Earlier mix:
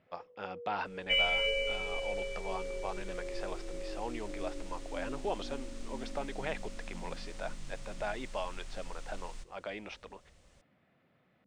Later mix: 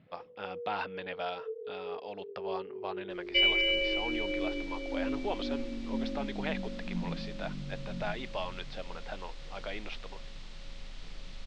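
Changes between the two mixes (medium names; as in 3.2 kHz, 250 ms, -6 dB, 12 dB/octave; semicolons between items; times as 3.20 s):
first sound: add peaking EQ 160 Hz +14 dB 2.5 oct; second sound: entry +2.25 s; master: add resonant low-pass 4 kHz, resonance Q 1.8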